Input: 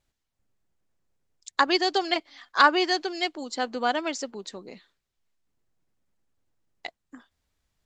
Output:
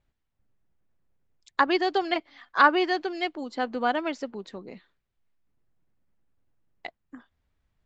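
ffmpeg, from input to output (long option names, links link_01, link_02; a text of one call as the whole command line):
ffmpeg -i in.wav -filter_complex "[0:a]acrossover=split=6100[link_01][link_02];[link_02]acompressor=threshold=-44dB:ratio=4:attack=1:release=60[link_03];[link_01][link_03]amix=inputs=2:normalize=0,bass=frequency=250:gain=4,treble=frequency=4000:gain=-14" out.wav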